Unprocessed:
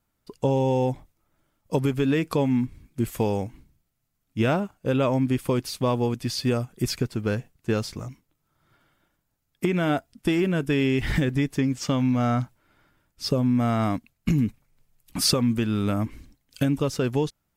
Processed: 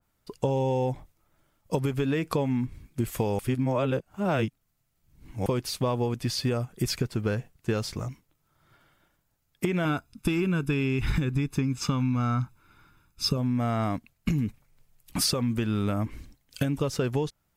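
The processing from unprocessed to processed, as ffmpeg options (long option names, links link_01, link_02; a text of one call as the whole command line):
ffmpeg -i in.wav -filter_complex "[0:a]asettb=1/sr,asplit=3[link_01][link_02][link_03];[link_01]atrim=end=9.854[link_04];[link_02]atrim=start=9.85:end=13.37,asetpts=PTS-STARTPTS,afade=type=in:duration=0.004:curve=qsin,afade=type=out:start_time=3.516:duration=0.004:curve=qsin,aecho=1:1:0.8:0.65,atrim=end_sample=155232[link_05];[link_03]atrim=start=13.366[link_06];[link_04][link_05]acrossfade=duration=0.004:curve1=hsin:curve2=qsin[link_07];[link_07][link_06]acrossfade=duration=0.004:curve1=qsin:curve2=hsin,asplit=3[link_08][link_09][link_10];[link_08]atrim=end=3.392[link_11];[link_09]atrim=start=3.388:end=5.462,asetpts=PTS-STARTPTS,areverse[link_12];[link_10]atrim=start=5.458[link_13];[link_11][link_12]acrossfade=duration=0.004:curve1=hsin:curve2=hsin[link_14];[link_14][link_13]acrossfade=duration=0.004:curve1=hsin:curve2=hsin,equalizer=frequency=260:width_type=o:width=0.77:gain=-3.5,acompressor=threshold=-25dB:ratio=6,adynamicequalizer=threshold=0.00398:dfrequency=2300:dqfactor=0.7:tfrequency=2300:tqfactor=0.7:attack=5:release=100:ratio=0.375:range=1.5:mode=cutabove:tftype=highshelf,volume=2.5dB" out.wav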